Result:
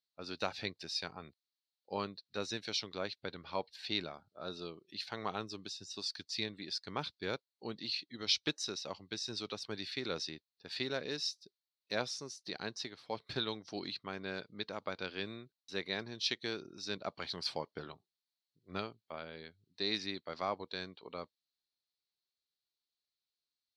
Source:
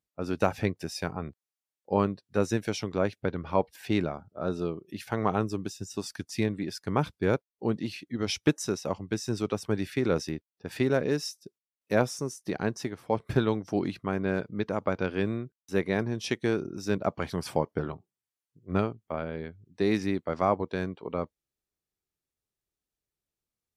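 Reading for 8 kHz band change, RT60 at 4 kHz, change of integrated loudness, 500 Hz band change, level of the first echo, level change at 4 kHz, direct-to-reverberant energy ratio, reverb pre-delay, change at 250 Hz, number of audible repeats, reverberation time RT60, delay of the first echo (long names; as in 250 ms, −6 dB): −6.0 dB, no reverb audible, −9.0 dB, −13.0 dB, no echo audible, +4.0 dB, no reverb audible, no reverb audible, −15.5 dB, no echo audible, no reverb audible, no echo audible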